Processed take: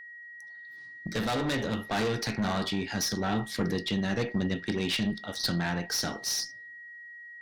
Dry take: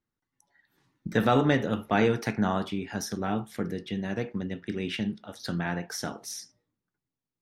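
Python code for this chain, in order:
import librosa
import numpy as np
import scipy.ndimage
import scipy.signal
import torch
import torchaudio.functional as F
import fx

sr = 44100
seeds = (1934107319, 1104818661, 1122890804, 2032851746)

y = fx.tracing_dist(x, sr, depth_ms=0.039)
y = fx.peak_eq(y, sr, hz=4500.0, db=13.0, octaves=0.83)
y = fx.tube_stage(y, sr, drive_db=27.0, bias=0.3)
y = fx.rider(y, sr, range_db=10, speed_s=0.5)
y = y + 10.0 ** (-47.0 / 20.0) * np.sin(2.0 * np.pi * 1900.0 * np.arange(len(y)) / sr)
y = F.gain(torch.from_numpy(y), 3.5).numpy()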